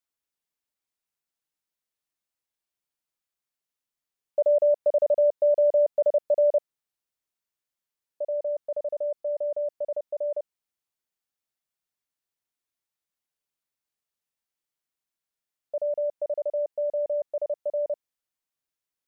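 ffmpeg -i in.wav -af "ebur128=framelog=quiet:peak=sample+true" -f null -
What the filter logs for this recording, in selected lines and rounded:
Integrated loudness:
  I:         -26.1 LUFS
  Threshold: -36.3 LUFS
Loudness range:
  LRA:        13.3 LU
  Threshold: -48.5 LUFS
  LRA low:   -36.8 LUFS
  LRA high:  -23.5 LUFS
Sample peak:
  Peak:      -15.9 dBFS
True peak:
  Peak:      -15.9 dBFS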